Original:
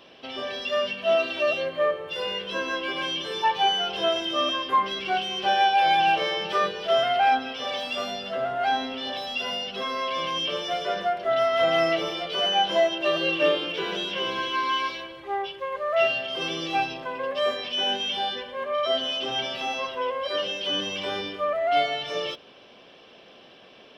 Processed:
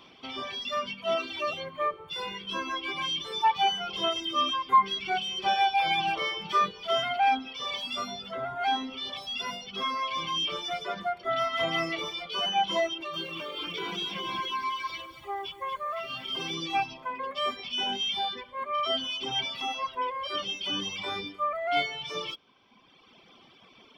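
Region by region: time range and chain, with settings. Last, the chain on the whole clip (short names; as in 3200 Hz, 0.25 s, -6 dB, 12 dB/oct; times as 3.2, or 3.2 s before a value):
12.9–16.54 compressor, threshold -26 dBFS + lo-fi delay 0.235 s, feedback 35%, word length 9-bit, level -6 dB
whole clip: reverb removal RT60 1.7 s; comb 0.9 ms, depth 58%; gain -2 dB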